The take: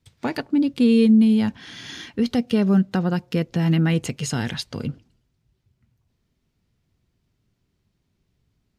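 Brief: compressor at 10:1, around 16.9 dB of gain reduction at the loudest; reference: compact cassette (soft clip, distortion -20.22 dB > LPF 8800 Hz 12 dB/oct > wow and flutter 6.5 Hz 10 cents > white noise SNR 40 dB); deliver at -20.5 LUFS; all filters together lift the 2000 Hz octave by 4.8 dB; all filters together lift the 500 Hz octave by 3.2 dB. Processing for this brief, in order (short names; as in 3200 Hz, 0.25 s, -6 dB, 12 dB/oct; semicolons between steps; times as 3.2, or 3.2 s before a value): bell 500 Hz +3.5 dB; bell 2000 Hz +6 dB; compressor 10:1, threshold -29 dBFS; soft clip -24 dBFS; LPF 8800 Hz 12 dB/oct; wow and flutter 6.5 Hz 10 cents; white noise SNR 40 dB; gain +14 dB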